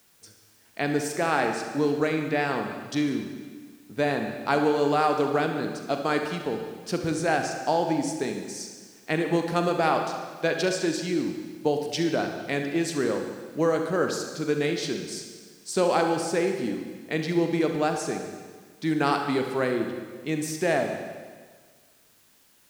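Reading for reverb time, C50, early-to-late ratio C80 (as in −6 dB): 1.6 s, 5.0 dB, 6.5 dB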